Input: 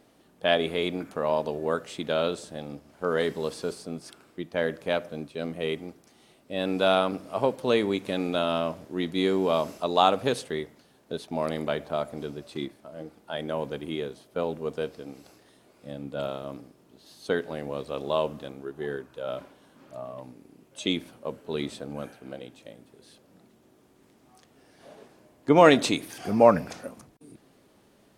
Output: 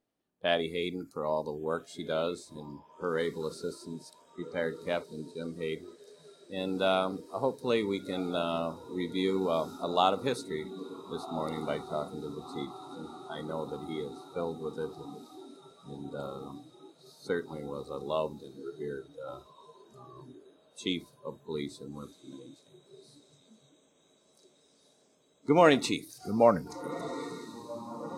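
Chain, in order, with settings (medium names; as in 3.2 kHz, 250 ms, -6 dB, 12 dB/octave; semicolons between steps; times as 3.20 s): echo that smears into a reverb 1463 ms, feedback 78%, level -12.5 dB; spectral noise reduction 19 dB; trim -5 dB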